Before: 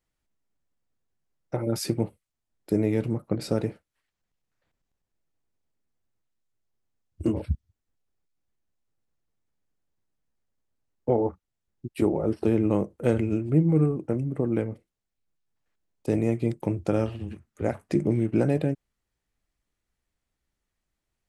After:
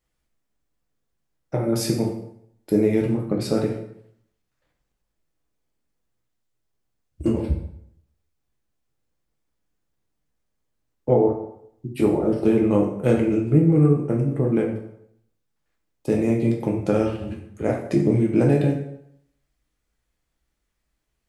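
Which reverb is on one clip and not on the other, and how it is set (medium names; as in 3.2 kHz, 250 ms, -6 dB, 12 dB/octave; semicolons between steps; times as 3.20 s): plate-style reverb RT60 0.71 s, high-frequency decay 0.8×, DRR 0 dB; trim +2 dB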